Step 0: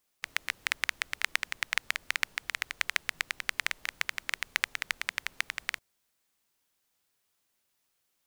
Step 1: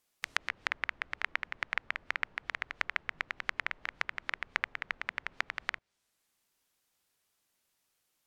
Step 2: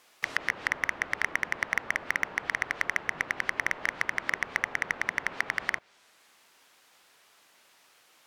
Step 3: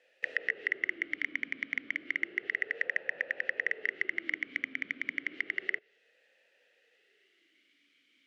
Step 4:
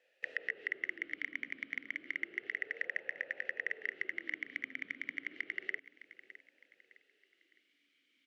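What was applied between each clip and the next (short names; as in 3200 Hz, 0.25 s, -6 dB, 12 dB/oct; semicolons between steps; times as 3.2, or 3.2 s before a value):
treble ducked by the level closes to 1900 Hz, closed at -35.5 dBFS
overdrive pedal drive 31 dB, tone 2100 Hz, clips at -6.5 dBFS
vowel sweep e-i 0.31 Hz; gain +6.5 dB
feedback echo 0.61 s, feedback 37%, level -16 dB; gain -6 dB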